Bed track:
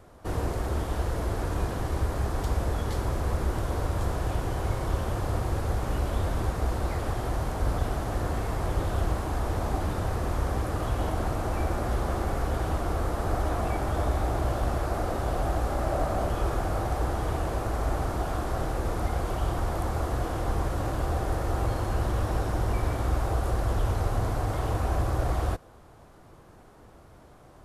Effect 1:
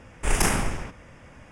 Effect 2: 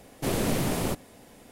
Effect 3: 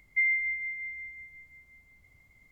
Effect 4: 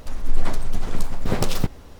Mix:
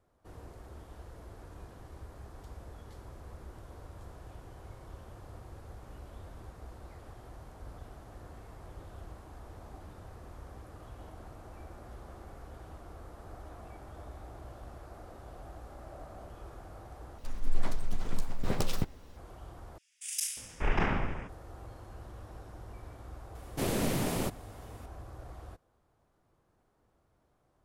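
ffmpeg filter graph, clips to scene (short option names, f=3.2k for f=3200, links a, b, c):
-filter_complex "[0:a]volume=-20dB[a];[1:a]acrossover=split=3300[b][c];[b]adelay=590[d];[d][c]amix=inputs=2:normalize=0[e];[a]asplit=3[f][g][h];[f]atrim=end=17.184[i];[4:a]atrim=end=1.99,asetpts=PTS-STARTPTS,volume=-9dB[j];[g]atrim=start=19.166:end=19.784[k];[e]atrim=end=1.51,asetpts=PTS-STARTPTS,volume=-5dB[l];[h]atrim=start=21.286[m];[2:a]atrim=end=1.51,asetpts=PTS-STARTPTS,volume=-4dB,afade=t=in:d=0.004:c=hsin,afade=t=out:st=1.506:d=0.004:c=hsin,adelay=23350[n];[i][j]acrossfade=d=0.004:c1=hsin:c2=hsin[o];[o][k]acrossfade=d=0.004:c1=hsin:c2=hsin[p];[p][l]acrossfade=d=0.004:c1=hsin:c2=hsin[q];[q][m]acrossfade=d=0.004:c1=hsin:c2=hsin[r];[r][n]amix=inputs=2:normalize=0"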